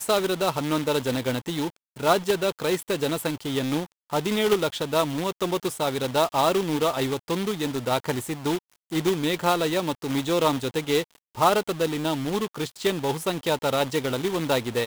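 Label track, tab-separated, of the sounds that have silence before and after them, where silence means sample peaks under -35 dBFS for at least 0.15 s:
1.970000	3.850000	sound
4.130000	8.580000	sound
8.920000	11.030000	sound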